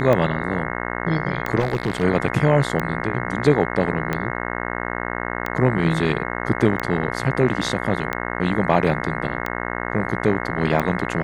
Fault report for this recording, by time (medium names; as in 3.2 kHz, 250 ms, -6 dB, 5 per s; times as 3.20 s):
buzz 60 Hz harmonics 36 -27 dBFS
tick 45 rpm -10 dBFS
1.59–2.04 s: clipped -16 dBFS